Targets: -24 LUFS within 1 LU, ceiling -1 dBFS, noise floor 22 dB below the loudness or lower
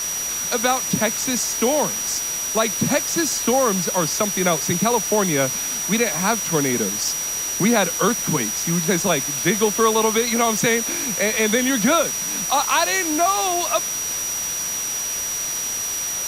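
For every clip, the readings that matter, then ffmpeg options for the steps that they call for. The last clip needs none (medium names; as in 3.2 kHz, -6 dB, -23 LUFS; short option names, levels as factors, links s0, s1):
steady tone 5.8 kHz; tone level -24 dBFS; noise floor -26 dBFS; noise floor target -42 dBFS; loudness -19.5 LUFS; peak level -6.0 dBFS; loudness target -24.0 LUFS
-> -af "bandreject=f=5800:w=30"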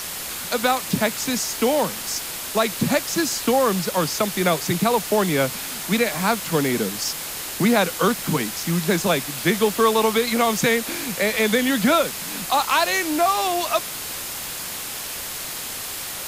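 steady tone not found; noise floor -31 dBFS; noise floor target -44 dBFS
-> -af "afftdn=nr=13:nf=-31"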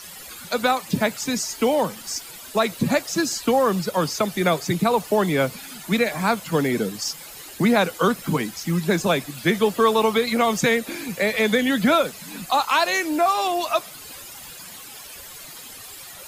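noise floor -40 dBFS; noise floor target -44 dBFS
-> -af "afftdn=nr=6:nf=-40"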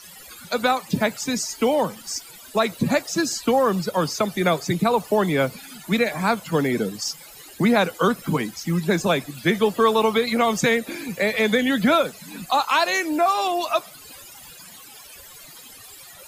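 noise floor -44 dBFS; loudness -22.0 LUFS; peak level -8.0 dBFS; loudness target -24.0 LUFS
-> -af "volume=0.794"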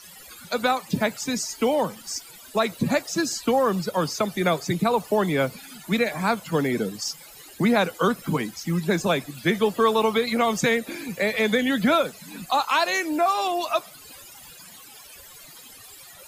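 loudness -24.0 LUFS; peak level -10.0 dBFS; noise floor -46 dBFS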